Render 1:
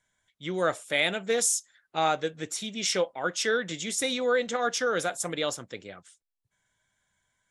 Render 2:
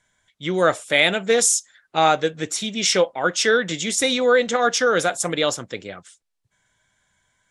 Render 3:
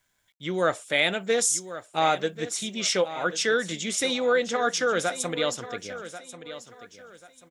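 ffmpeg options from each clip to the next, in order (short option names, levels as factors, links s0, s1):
-af "lowpass=10000,volume=2.66"
-af "acrusher=bits=10:mix=0:aa=0.000001,aecho=1:1:1088|2176|3264:0.211|0.0634|0.019,volume=0.501"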